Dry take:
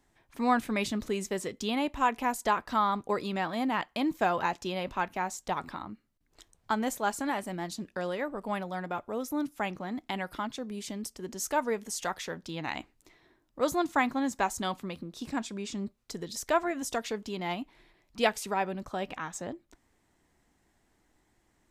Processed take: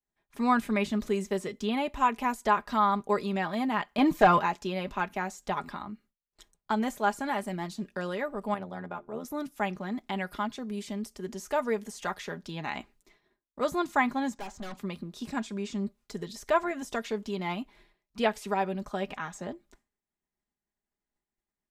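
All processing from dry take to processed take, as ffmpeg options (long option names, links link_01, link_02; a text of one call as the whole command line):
ffmpeg -i in.wav -filter_complex "[0:a]asettb=1/sr,asplit=3[link_01][link_02][link_03];[link_01]atrim=end=3.984[link_04];[link_02]atrim=start=3.98:end=4.39,asetpts=PTS-STARTPTS,afade=type=in:duration=0.004:curve=qsin,afade=type=out:start_time=0.406:duration=0.004:curve=qsin,aeval=exprs='0.211*sin(PI/2*1.58*val(0)/0.211)':channel_layout=same,aecho=1:1:6.6:0.34,atrim=end_sample=18081[link_05];[link_03]atrim=start=4.386[link_06];[link_04][link_05]acrossfade=duration=0.004:curve1=hsin:curve2=qsin[link_07];[link_07][link_06]acrossfade=duration=0.004:curve1=qsin:curve2=hsin,asettb=1/sr,asplit=3[link_08][link_09][link_10];[link_08]atrim=end=8.544[link_11];[link_09]atrim=start=8.54:end=9.25,asetpts=PTS-STARTPTS,afade=type=in:duration=0.004:curve=qsin,afade=type=out:start_time=0.706:duration=0.004:curve=qsin,highshelf=frequency=2400:gain=-9,bandreject=frequency=50:width_type=h:width=6,bandreject=frequency=100:width_type=h:width=6,bandreject=frequency=150:width_type=h:width=6,bandreject=frequency=200:width_type=h:width=6,bandreject=frequency=250:width_type=h:width=6,bandreject=frequency=300:width_type=h:width=6,bandreject=frequency=350:width_type=h:width=6,tremolo=f=80:d=0.824[link_12];[link_10]atrim=start=9.246[link_13];[link_11][link_12]acrossfade=duration=0.004:curve1=hsin:curve2=qsin[link_14];[link_14][link_13]acrossfade=duration=0.004:curve1=qsin:curve2=hsin,asettb=1/sr,asplit=3[link_15][link_16][link_17];[link_15]atrim=end=14.344[link_18];[link_16]atrim=start=14.34:end=14.77,asetpts=PTS-STARTPTS,afade=type=in:duration=0.004:curve=qsin,afade=type=out:start_time=0.426:duration=0.004:curve=qsin,acrossover=split=3600[link_19][link_20];[link_20]acompressor=threshold=-49dB:ratio=4:attack=1:release=60[link_21];[link_19][link_21]amix=inputs=2:normalize=0,lowpass=frequency=7600:width=0.5412,lowpass=frequency=7600:width=1.3066,aeval=exprs='(tanh(79.4*val(0)+0.5)-tanh(0.5))/79.4':channel_layout=same[link_22];[link_17]atrim=start=14.766[link_23];[link_18][link_22]acrossfade=duration=0.004:curve1=hsin:curve2=qsin[link_24];[link_24][link_23]acrossfade=duration=0.004:curve1=qsin:curve2=hsin,agate=range=-33dB:threshold=-55dB:ratio=3:detection=peak,aecho=1:1:4.9:0.49,acrossover=split=2900[link_25][link_26];[link_26]acompressor=threshold=-43dB:ratio=4:attack=1:release=60[link_27];[link_25][link_27]amix=inputs=2:normalize=0" out.wav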